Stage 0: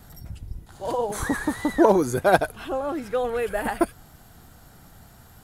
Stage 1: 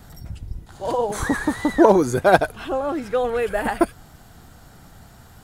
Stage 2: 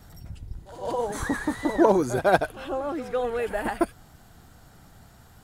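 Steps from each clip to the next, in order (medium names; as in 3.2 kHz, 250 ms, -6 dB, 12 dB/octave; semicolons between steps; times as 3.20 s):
peaking EQ 12 kHz -6.5 dB 0.57 oct; trim +3.5 dB
pre-echo 153 ms -14 dB; trim -5.5 dB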